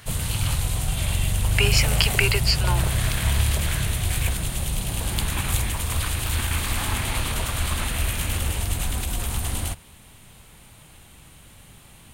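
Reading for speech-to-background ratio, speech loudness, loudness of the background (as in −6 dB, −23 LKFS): 2.0 dB, −23.0 LKFS, −25.0 LKFS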